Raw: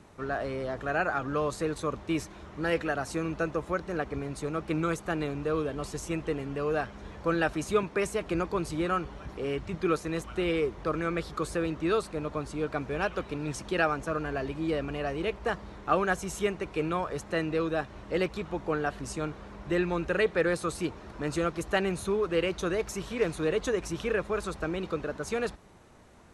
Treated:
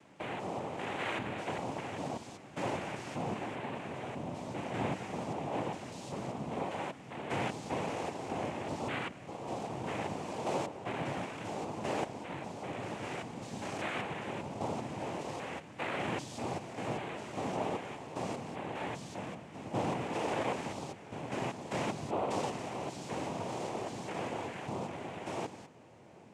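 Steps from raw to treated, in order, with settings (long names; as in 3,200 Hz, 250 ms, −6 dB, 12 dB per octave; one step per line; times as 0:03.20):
spectrum averaged block by block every 200 ms
hum removal 151.5 Hz, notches 8
cochlear-implant simulation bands 4
feedback echo with a low-pass in the loop 786 ms, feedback 82%, low-pass 1,200 Hz, level −21.5 dB
level −3.5 dB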